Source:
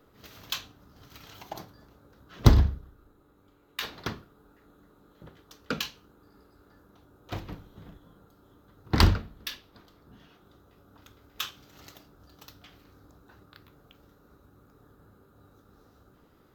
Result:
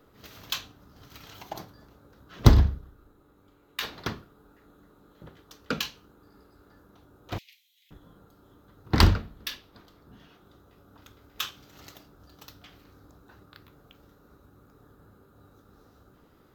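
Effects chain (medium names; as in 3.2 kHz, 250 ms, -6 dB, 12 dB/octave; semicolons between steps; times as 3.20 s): 7.38–7.91 s: steep high-pass 2.1 kHz 72 dB/octave; trim +1.5 dB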